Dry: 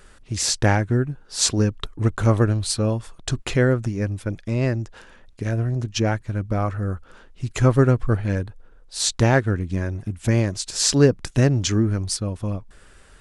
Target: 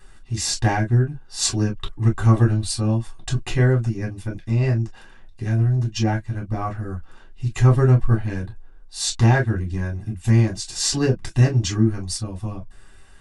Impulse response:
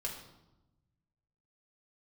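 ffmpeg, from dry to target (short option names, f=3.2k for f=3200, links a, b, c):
-filter_complex "[1:a]atrim=start_sample=2205,atrim=end_sample=3528,asetrate=74970,aresample=44100[a];[0:a][a]afir=irnorm=-1:irlink=0,volume=3dB"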